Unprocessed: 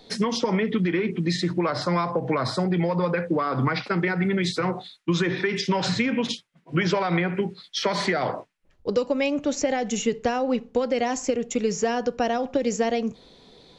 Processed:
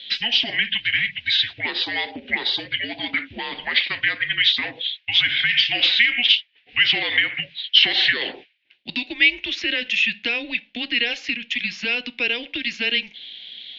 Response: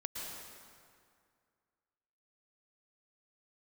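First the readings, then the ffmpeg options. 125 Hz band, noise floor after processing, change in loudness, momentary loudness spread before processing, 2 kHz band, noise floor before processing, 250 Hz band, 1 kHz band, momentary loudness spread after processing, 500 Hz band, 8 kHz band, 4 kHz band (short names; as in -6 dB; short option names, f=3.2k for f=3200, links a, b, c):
-16.5 dB, -57 dBFS, +5.5 dB, 4 LU, +11.0 dB, -59 dBFS, -11.0 dB, -9.5 dB, 11 LU, -13.0 dB, under -10 dB, +15.5 dB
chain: -af "aexciter=amount=14.8:drive=9.8:freq=2.4k,highpass=f=500:t=q:w=0.5412,highpass=f=500:t=q:w=1.307,lowpass=f=3.4k:t=q:w=0.5176,lowpass=f=3.4k:t=q:w=0.7071,lowpass=f=3.4k:t=q:w=1.932,afreqshift=-240,volume=-6.5dB"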